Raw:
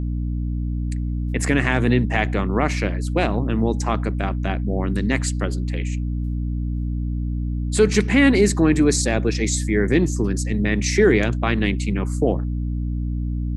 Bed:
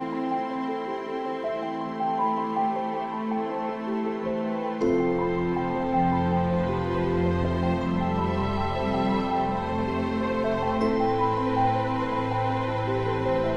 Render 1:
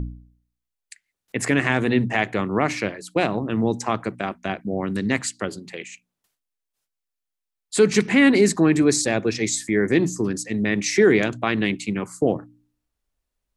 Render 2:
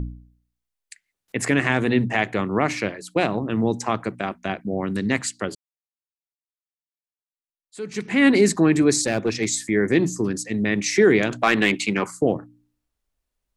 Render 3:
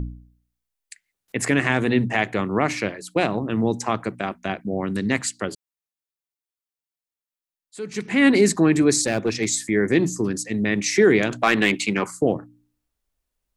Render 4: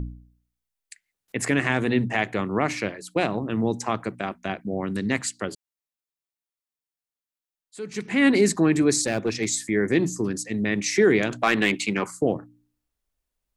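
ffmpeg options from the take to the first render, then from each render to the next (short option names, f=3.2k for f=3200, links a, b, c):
-af "bandreject=f=60:t=h:w=4,bandreject=f=120:t=h:w=4,bandreject=f=180:t=h:w=4,bandreject=f=240:t=h:w=4,bandreject=f=300:t=h:w=4"
-filter_complex "[0:a]asettb=1/sr,asplit=3[a][b][c];[a]atrim=end=9.014[d];[b]atrim=start=9.01:end=9.55,asetpts=PTS-STARTPTS,afade=t=in:d=0.004:c=qsin,afade=t=out:st=0.536:d=0.004:c=qsin,asoftclip=type=hard:threshold=-14.5dB[e];[c]atrim=start=9.546[f];[d][e]acrossfade=d=0.004:c1=hsin:c2=qsin[g];[g][f]acrossfade=d=0.004:c1=qsin:c2=hsin,asettb=1/sr,asplit=3[h][i][j];[h]atrim=end=11.314[k];[i]atrim=start=11.31:end=12.11,asetpts=PTS-STARTPTS,afade=t=in:d=0.004:c=qsin,afade=t=out:st=0.796:d=0.004:c=qsin,asplit=2[l][m];[m]highpass=f=720:p=1,volume=16dB,asoftclip=type=tanh:threshold=-6dB[n];[l][n]amix=inputs=2:normalize=0,lowpass=f=4.4k:p=1,volume=-6dB[o];[j]atrim=start=12.106[p];[k][o]acrossfade=d=0.004:c1=hsin:c2=qsin[q];[q][p]acrossfade=d=0.004:c1=qsin:c2=hsin,asplit=2[r][s];[r]atrim=end=5.55,asetpts=PTS-STARTPTS,afade=t=out:st=5.546:d=0.004:c=hsin[t];[s]atrim=start=5.55,asetpts=PTS-STARTPTS,afade=t=in:d=2.71:c=exp[u];[t][u]concat=n=2:v=0:a=1"
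-af "highshelf=f=9.9k:g=4"
-af "volume=-2.5dB"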